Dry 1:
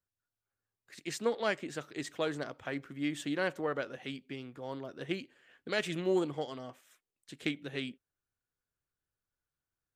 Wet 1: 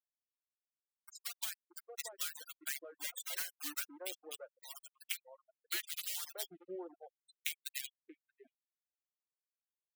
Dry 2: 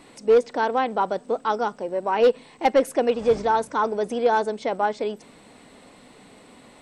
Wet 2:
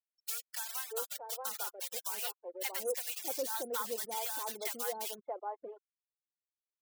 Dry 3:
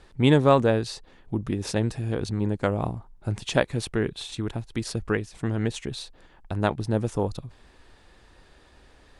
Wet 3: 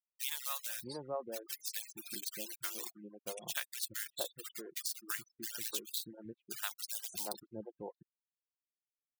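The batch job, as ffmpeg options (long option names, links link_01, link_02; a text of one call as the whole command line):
ffmpeg -i in.wav -filter_complex "[0:a]dynaudnorm=framelen=260:gausssize=13:maxgain=6.5dB,acrossover=split=420[link_01][link_02];[link_01]aeval=exprs='val(0)*(1-0.7/2+0.7/2*cos(2*PI*4.6*n/s))':channel_layout=same[link_03];[link_02]aeval=exprs='val(0)*(1-0.7/2-0.7/2*cos(2*PI*4.6*n/s))':channel_layout=same[link_04];[link_03][link_04]amix=inputs=2:normalize=0,highshelf=frequency=8700:gain=-10.5,acrusher=bits=6:dc=4:mix=0:aa=0.000001,aderivative,aecho=1:1:5.7:0.33,afftfilt=real='re*gte(hypot(re,im),0.00708)':imag='im*gte(hypot(re,im),0.00708)':win_size=1024:overlap=0.75,acrossover=split=880[link_05][link_06];[link_05]adelay=630[link_07];[link_07][link_06]amix=inputs=2:normalize=0,acrossover=split=450[link_08][link_09];[link_09]acompressor=threshold=-40dB:ratio=6[link_10];[link_08][link_10]amix=inputs=2:normalize=0,volume=5.5dB" out.wav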